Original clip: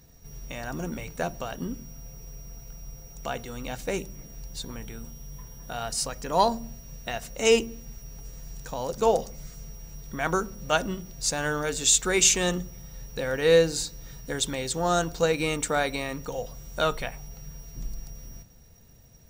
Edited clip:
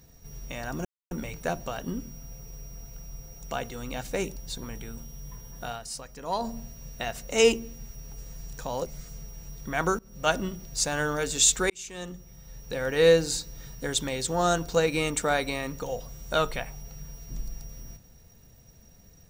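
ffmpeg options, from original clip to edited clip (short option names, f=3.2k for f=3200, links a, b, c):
-filter_complex "[0:a]asplit=8[a][b][c][d][e][f][g][h];[a]atrim=end=0.85,asetpts=PTS-STARTPTS,afade=t=out:st=0.846:d=0.004:c=hsin,apad=pad_dur=0.26[i];[b]atrim=start=0.85:end=4.102,asetpts=PTS-STARTPTS,afade=t=in:d=0.004:c=hsin[j];[c]atrim=start=4.428:end=5.86,asetpts=PTS-STARTPTS,afade=t=out:st=1.272:d=0.16:c=qsin:silence=0.375837[k];[d]atrim=start=5.86:end=6.46,asetpts=PTS-STARTPTS,volume=-8.5dB[l];[e]atrim=start=6.46:end=8.932,asetpts=PTS-STARTPTS,afade=t=in:d=0.16:c=qsin:silence=0.375837[m];[f]atrim=start=9.318:end=10.45,asetpts=PTS-STARTPTS,afade=t=out:st=1.128:d=0.004:c=hsin:silence=0.0707946[n];[g]atrim=start=10.45:end=12.16,asetpts=PTS-STARTPTS,afade=t=in:d=0.32:silence=0.0707946,afade=t=out:st=1.706:d=0.004:c=hsin[o];[h]atrim=start=12.16,asetpts=PTS-STARTPTS,afade=t=in:d=1.27[p];[i][j]concat=n=2:v=0:a=1[q];[k][l][m]concat=n=3:v=0:a=1[r];[q][r]acrossfade=d=0.004:c1=hsin:c2=hsin[s];[n][o][p]concat=n=3:v=0:a=1[t];[s][t]acrossfade=d=0.004:c1=hsin:c2=hsin"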